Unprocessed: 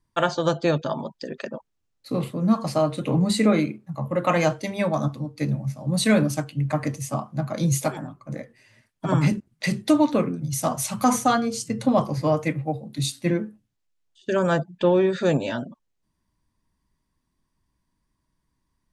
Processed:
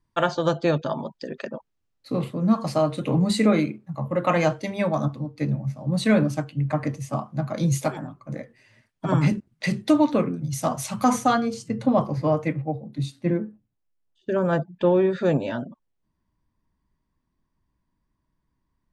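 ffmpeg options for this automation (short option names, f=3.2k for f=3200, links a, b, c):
-af "asetnsamples=n=441:p=0,asendcmd='2.58 lowpass f 8100;3.7 lowpass f 4500;5.05 lowpass f 2600;7.13 lowpass f 4900;11.54 lowpass f 2000;12.62 lowpass f 1000;14.53 lowpass f 1900',lowpass=f=4.6k:p=1"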